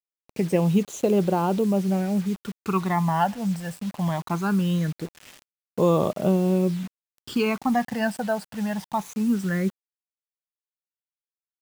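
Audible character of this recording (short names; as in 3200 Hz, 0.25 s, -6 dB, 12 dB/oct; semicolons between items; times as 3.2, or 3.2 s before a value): phasing stages 12, 0.21 Hz, lowest notch 370–1800 Hz; a quantiser's noise floor 8-bit, dither none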